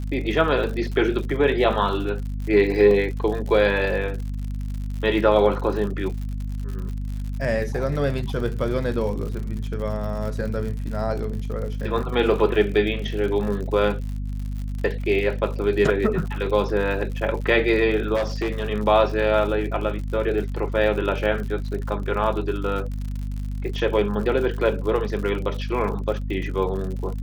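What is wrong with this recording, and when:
crackle 82/s -31 dBFS
hum 50 Hz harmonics 5 -28 dBFS
2.91 gap 2.1 ms
18.15–18.65 clipped -19.5 dBFS

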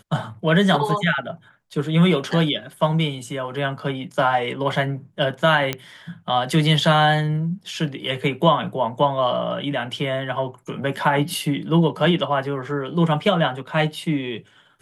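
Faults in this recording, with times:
5.73 pop -8 dBFS

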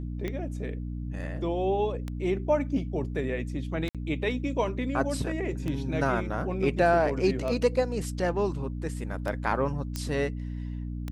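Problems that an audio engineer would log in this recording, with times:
hum 60 Hz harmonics 5 -34 dBFS
tick 33 1/3 rpm -20 dBFS
3.89–3.95 gap 57 ms
9.96 pop -17 dBFS

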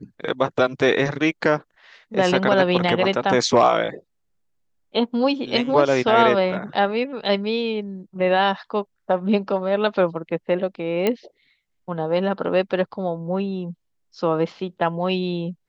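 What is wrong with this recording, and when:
11.07 pop -8 dBFS

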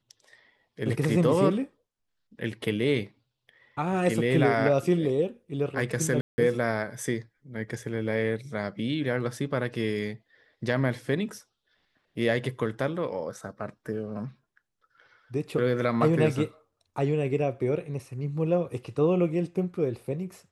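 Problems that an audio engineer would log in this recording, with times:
6.21–6.38 gap 0.17 s

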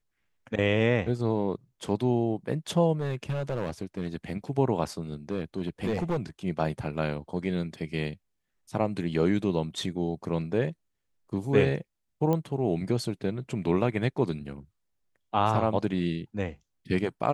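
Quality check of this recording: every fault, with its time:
2.99–4.16 clipped -25 dBFS
5.31–6.17 clipped -23.5 dBFS
12.33 pop -16 dBFS

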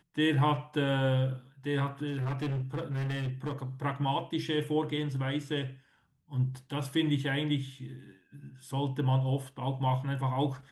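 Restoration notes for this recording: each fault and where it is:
2.07–3.53 clipped -29.5 dBFS

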